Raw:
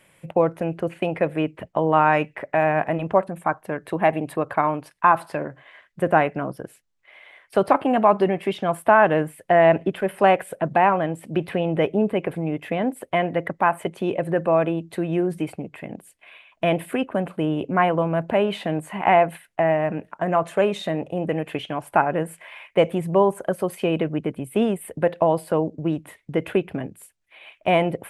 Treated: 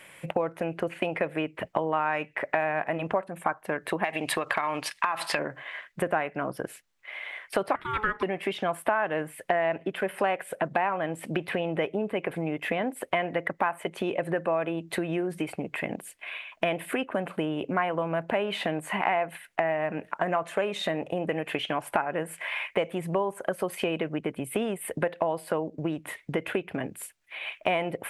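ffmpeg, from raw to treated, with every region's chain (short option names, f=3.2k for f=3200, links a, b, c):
-filter_complex "[0:a]asettb=1/sr,asplit=3[a][b][c];[a]atrim=end=4.044[d];[b]atrim=start=4.04:end=5.39,asetpts=PTS-STARTPTS,afade=t=in:d=0.004:c=qsin,afade=t=out:st=1.346:d=0.004:c=qsin,equalizer=f=4.4k:w=0.35:g=14,bandreject=f=1.5k:w=13,acompressor=threshold=-22dB:ratio=4:attack=3.2:release=140:knee=1:detection=peak[e];[c]atrim=start=5.386[f];[d][e]acrossfade=d=0.004:c1=hsin:c2=qsin[g];[g][f]acrossfade=d=0.004:c1=qsin:c2=hsin,asettb=1/sr,asplit=3[h][i][j];[h]atrim=end=7.754[k];[i]atrim=start=7.75:end=8.23,asetpts=PTS-STARTPTS,afade=t=in:d=0.004:c=qsin,afade=t=out:st=0.476:d=0.004:c=qsin,highpass=f=620:p=1,aeval=exprs='val(0)*sin(2*PI*640*n/s)':c=same[l];[j]atrim=start=8.226[m];[k][l]acrossfade=d=0.004:c1=hsin:c2=qsin[n];[n][m]acrossfade=d=0.004:c1=qsin:c2=hsin,equalizer=f=2k:t=o:w=1.5:g=4,acompressor=threshold=-30dB:ratio=5,lowshelf=f=230:g=-8.5,volume=6dB"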